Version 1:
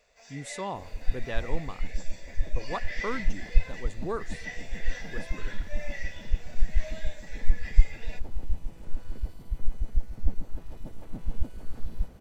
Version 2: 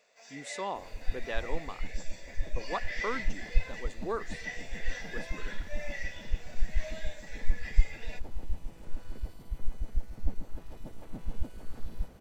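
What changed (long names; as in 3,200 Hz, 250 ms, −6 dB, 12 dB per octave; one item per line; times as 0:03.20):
speech: add band-pass filter 240–7,800 Hz
master: add low-shelf EQ 220 Hz −5 dB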